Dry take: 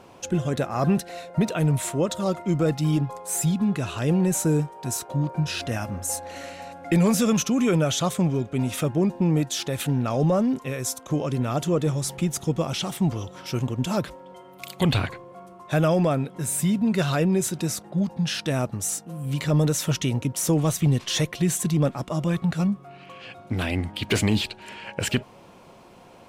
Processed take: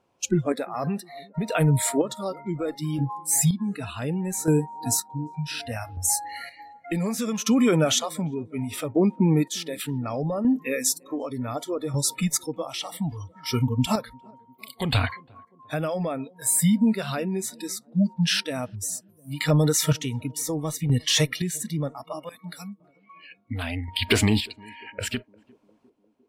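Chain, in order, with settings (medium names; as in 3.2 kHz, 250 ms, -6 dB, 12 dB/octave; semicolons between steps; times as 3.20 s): spectral noise reduction 27 dB; 22.29–22.80 s: pre-emphasis filter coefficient 0.9; compression 3:1, threshold -23 dBFS, peak gain reduction 5.5 dB; square tremolo 0.67 Hz, depth 60%, duty 35%; on a send: band-passed feedback delay 351 ms, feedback 64%, band-pass 350 Hz, level -24 dB; on the sum: trim +6 dB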